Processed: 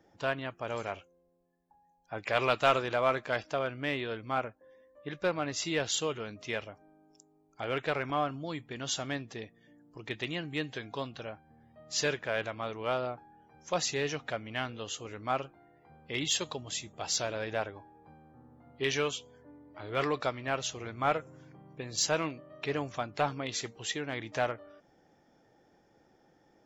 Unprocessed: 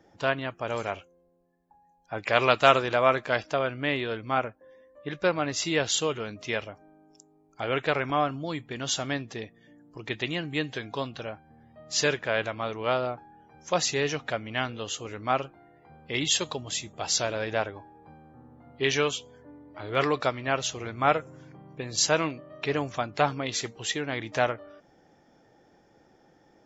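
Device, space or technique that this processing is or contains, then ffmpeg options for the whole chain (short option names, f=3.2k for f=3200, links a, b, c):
parallel distortion: -filter_complex "[0:a]asplit=2[a][b];[b]asoftclip=type=hard:threshold=-18dB,volume=-6dB[c];[a][c]amix=inputs=2:normalize=0,volume=-8.5dB"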